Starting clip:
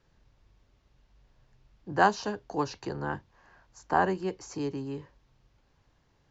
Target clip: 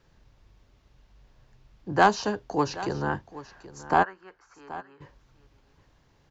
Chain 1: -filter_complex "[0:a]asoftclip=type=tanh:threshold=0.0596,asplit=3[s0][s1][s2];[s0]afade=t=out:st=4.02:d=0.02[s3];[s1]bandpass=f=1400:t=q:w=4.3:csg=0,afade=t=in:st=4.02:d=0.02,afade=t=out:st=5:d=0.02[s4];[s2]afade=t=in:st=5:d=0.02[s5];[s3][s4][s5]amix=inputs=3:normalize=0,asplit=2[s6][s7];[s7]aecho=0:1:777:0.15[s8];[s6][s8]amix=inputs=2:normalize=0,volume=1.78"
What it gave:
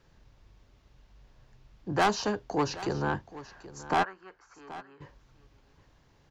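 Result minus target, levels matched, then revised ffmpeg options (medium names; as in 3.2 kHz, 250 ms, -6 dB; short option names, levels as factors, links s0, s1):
saturation: distortion +12 dB
-filter_complex "[0:a]asoftclip=type=tanh:threshold=0.224,asplit=3[s0][s1][s2];[s0]afade=t=out:st=4.02:d=0.02[s3];[s1]bandpass=f=1400:t=q:w=4.3:csg=0,afade=t=in:st=4.02:d=0.02,afade=t=out:st=5:d=0.02[s4];[s2]afade=t=in:st=5:d=0.02[s5];[s3][s4][s5]amix=inputs=3:normalize=0,asplit=2[s6][s7];[s7]aecho=0:1:777:0.15[s8];[s6][s8]amix=inputs=2:normalize=0,volume=1.78"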